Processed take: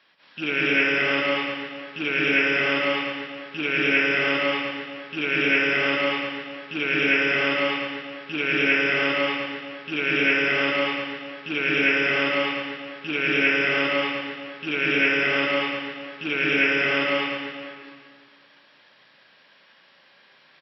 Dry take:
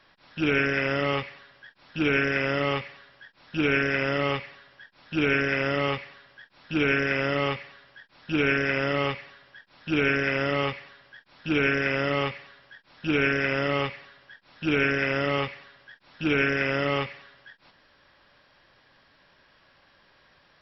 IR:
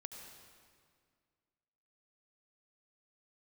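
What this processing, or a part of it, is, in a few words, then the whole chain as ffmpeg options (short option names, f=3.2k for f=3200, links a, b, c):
stadium PA: -filter_complex "[0:a]highpass=f=160:w=0.5412,highpass=f=160:w=1.3066,equalizer=f=2.8k:t=o:w=1.4:g=8,aecho=1:1:195.3|227.4:0.891|1[a];[1:a]atrim=start_sample=2205[b];[a][b]afir=irnorm=-1:irlink=0"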